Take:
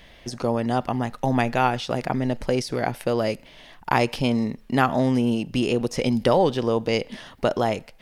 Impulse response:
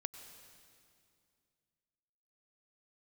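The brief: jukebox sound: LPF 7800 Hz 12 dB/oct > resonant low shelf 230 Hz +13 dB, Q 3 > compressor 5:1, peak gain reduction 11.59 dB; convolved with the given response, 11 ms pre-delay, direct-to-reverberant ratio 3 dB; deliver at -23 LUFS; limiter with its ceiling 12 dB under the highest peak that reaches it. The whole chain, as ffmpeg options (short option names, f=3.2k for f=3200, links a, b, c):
-filter_complex "[0:a]alimiter=limit=-16dB:level=0:latency=1,asplit=2[a][b];[1:a]atrim=start_sample=2205,adelay=11[c];[b][c]afir=irnorm=-1:irlink=0,volume=-1dB[d];[a][d]amix=inputs=2:normalize=0,lowpass=7.8k,lowshelf=f=230:t=q:w=3:g=13,acompressor=threshold=-20dB:ratio=5,volume=2dB"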